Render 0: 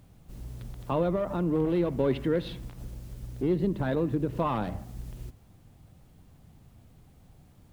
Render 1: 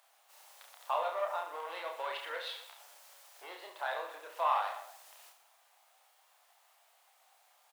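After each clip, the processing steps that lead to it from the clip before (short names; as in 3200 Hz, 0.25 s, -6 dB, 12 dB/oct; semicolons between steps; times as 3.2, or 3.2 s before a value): steep high-pass 690 Hz 36 dB/oct; on a send: reverse bouncing-ball echo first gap 30 ms, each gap 1.3×, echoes 5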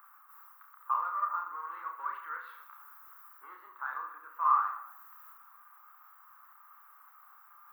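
EQ curve 260 Hz 0 dB, 650 Hz -26 dB, 1200 Hz +11 dB, 2400 Hz -17 dB, 3600 Hz -28 dB, 7300 Hz -23 dB, 10000 Hz -21 dB, 15000 Hz +4 dB; reverse; upward compressor, threshold -46 dBFS; reverse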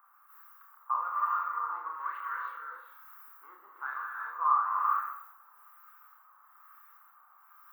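dynamic EQ 1500 Hz, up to +4 dB, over -42 dBFS, Q 0.75; non-linear reverb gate 0.42 s rising, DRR 0.5 dB; harmonic tremolo 1.1 Hz, depth 70%, crossover 1100 Hz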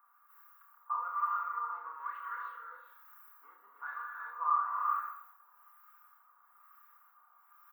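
comb 4.2 ms, depth 67%; gain -6.5 dB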